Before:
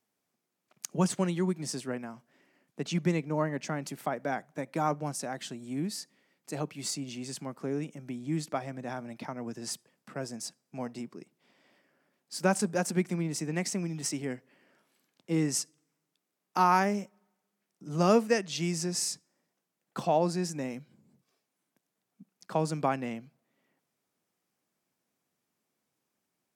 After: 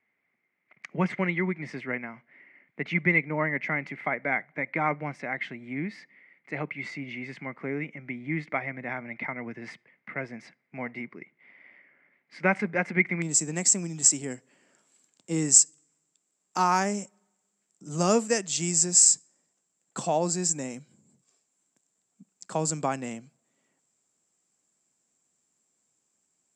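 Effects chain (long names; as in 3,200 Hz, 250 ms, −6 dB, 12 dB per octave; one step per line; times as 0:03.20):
low-pass with resonance 2,100 Hz, resonance Q 15, from 0:13.22 7,500 Hz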